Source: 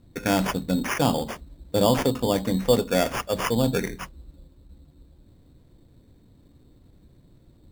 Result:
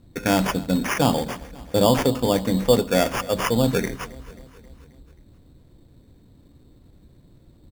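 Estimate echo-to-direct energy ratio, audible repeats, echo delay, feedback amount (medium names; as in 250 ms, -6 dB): -18.5 dB, 4, 267 ms, 59%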